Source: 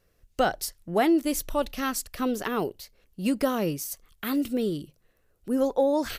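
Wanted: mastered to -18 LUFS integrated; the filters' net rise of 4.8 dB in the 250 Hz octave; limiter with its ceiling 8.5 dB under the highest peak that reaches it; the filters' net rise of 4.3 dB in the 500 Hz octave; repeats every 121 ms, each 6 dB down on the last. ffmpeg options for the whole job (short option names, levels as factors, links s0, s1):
-af "equalizer=f=250:t=o:g=4.5,equalizer=f=500:t=o:g=4,alimiter=limit=0.158:level=0:latency=1,aecho=1:1:121|242|363|484|605|726:0.501|0.251|0.125|0.0626|0.0313|0.0157,volume=2.37"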